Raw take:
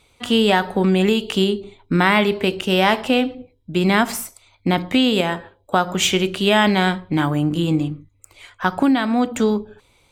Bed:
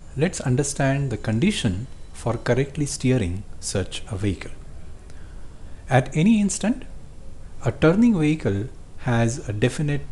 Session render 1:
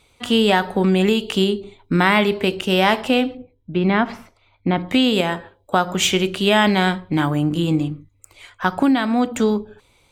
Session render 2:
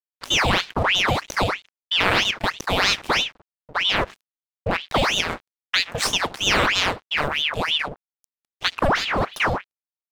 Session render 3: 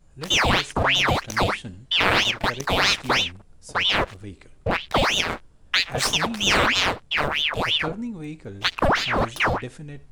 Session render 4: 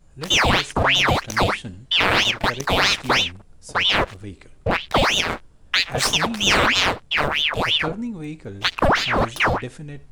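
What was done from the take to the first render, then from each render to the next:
3.37–4.89 s: distance through air 320 m
crossover distortion -31.5 dBFS; ring modulator with a swept carrier 1.8 kHz, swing 85%, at 3.1 Hz
add bed -14.5 dB
trim +2.5 dB; peak limiter -3 dBFS, peak gain reduction 3 dB

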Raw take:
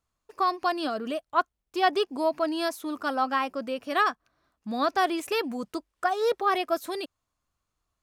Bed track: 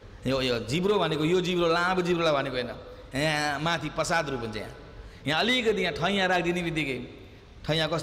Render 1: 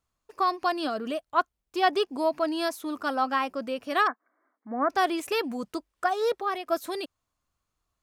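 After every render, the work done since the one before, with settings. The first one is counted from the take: 4.07–4.90 s: brick-wall FIR band-pass 220–2300 Hz; 6.19–6.66 s: fade out, to -9.5 dB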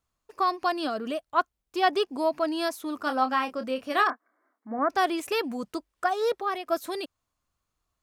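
2.98–4.79 s: doubling 27 ms -8.5 dB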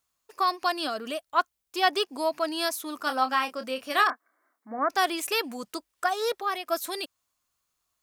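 tilt EQ +2.5 dB/octave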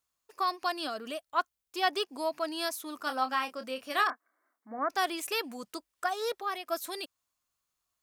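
trim -5 dB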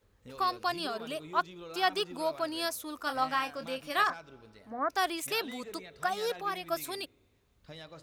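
add bed track -21.5 dB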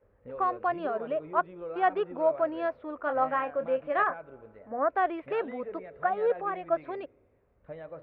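inverse Chebyshev low-pass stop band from 6.5 kHz, stop band 60 dB; peaking EQ 550 Hz +11 dB 0.74 oct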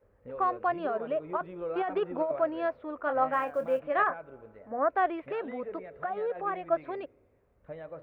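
1.29–2.39 s: compressor with a negative ratio -28 dBFS; 3.33–3.81 s: block-companded coder 7-bit; 5.19–6.41 s: compression 3:1, threshold -30 dBFS

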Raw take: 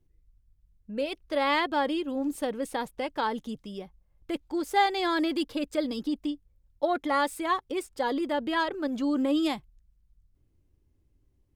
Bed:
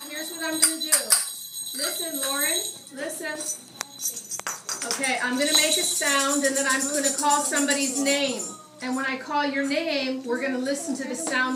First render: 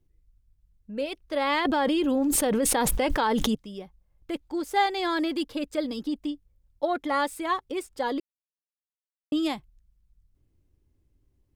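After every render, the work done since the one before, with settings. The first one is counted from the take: 1.65–3.55 s: level flattener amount 100%; 8.20–9.32 s: mute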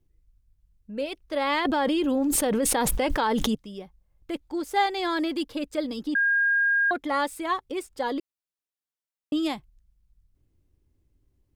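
6.15–6.91 s: bleep 1.62 kHz -19 dBFS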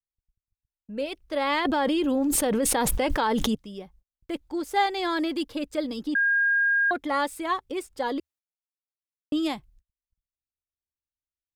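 peaking EQ 77 Hz +4 dB 0.28 oct; gate -55 dBFS, range -38 dB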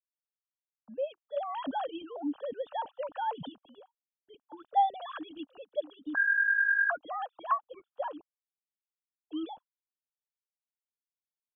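formants replaced by sine waves; static phaser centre 880 Hz, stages 4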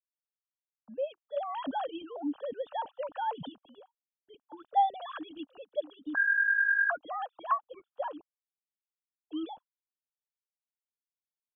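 no audible change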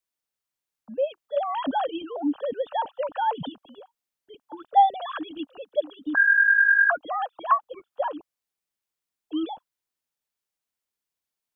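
trim +8 dB

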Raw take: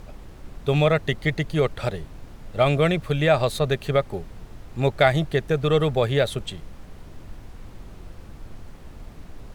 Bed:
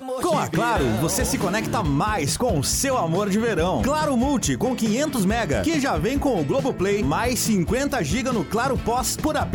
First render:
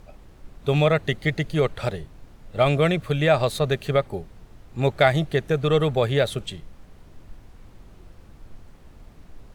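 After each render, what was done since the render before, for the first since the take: noise print and reduce 6 dB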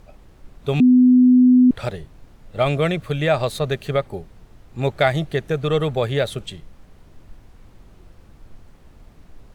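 0.80–1.71 s: bleep 251 Hz -8.5 dBFS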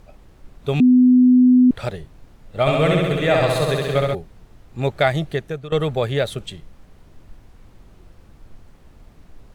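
2.60–4.15 s: flutter echo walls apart 11.4 m, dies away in 1.5 s; 5.30–5.72 s: fade out, to -16.5 dB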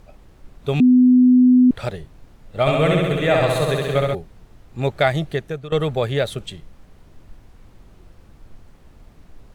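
2.71–4.14 s: peaking EQ 4.9 kHz -7.5 dB 0.28 oct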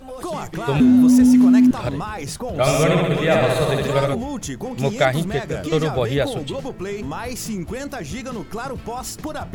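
add bed -6.5 dB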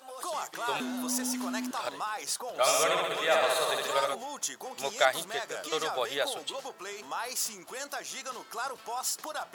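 high-pass 970 Hz 12 dB/octave; peaking EQ 2.2 kHz -7.5 dB 0.92 oct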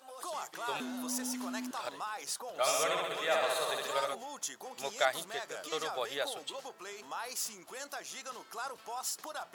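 trim -5 dB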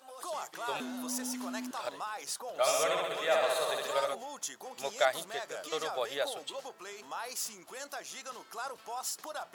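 dynamic bell 590 Hz, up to +4 dB, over -47 dBFS, Q 2.5

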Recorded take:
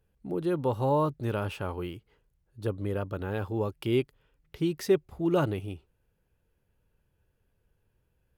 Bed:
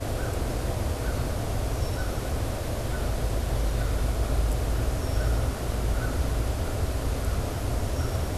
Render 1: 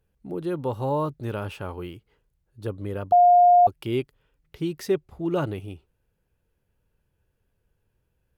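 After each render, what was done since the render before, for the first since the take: 3.12–3.67 s: bleep 709 Hz -11.5 dBFS; 4.91–5.47 s: treble shelf 8.3 kHz -5 dB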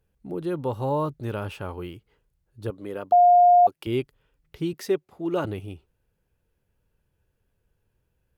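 2.70–3.87 s: high-pass 240 Hz; 4.73–5.45 s: high-pass 220 Hz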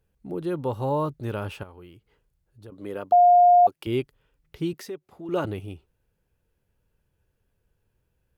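1.63–2.72 s: compression 2:1, threshold -52 dBFS; 4.81–5.29 s: compression 2:1, threshold -41 dBFS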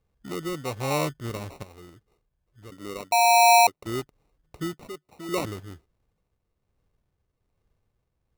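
sample-and-hold 27×; tremolo triangle 1.2 Hz, depth 45%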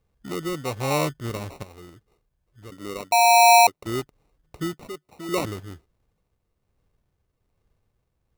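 trim +2.5 dB

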